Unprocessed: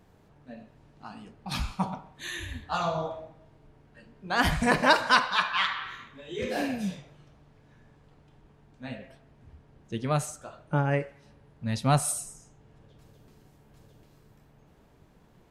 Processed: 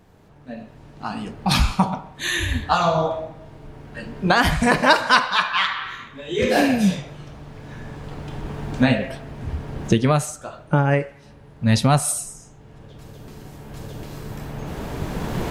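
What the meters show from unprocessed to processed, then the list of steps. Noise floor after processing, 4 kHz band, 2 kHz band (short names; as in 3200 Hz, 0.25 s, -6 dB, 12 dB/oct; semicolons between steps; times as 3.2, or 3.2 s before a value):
-47 dBFS, +7.5 dB, +7.0 dB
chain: recorder AGC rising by 8.3 dB/s; gain +5.5 dB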